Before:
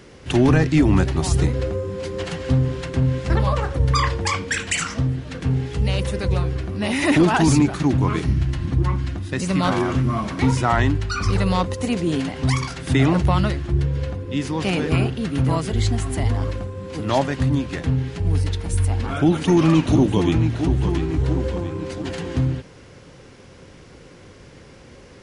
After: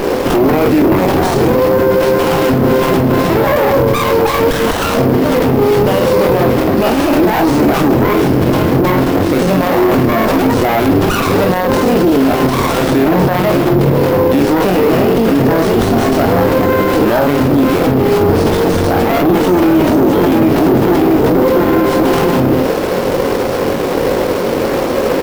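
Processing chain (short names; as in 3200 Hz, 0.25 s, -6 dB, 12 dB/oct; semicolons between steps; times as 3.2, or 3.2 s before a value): octaver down 2 oct, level +3 dB; tilt shelf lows +8 dB, about 1100 Hz; reverse; upward compressor, threshold -30 dBFS; reverse; HPF 510 Hz 12 dB/oct; on a send: early reflections 22 ms -4.5 dB, 49 ms -8.5 dB; on the sum: careless resampling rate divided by 3×, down none, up hold; bell 5000 Hz +10 dB 0.21 oct; maximiser +33.5 dB; running maximum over 17 samples; gain -2 dB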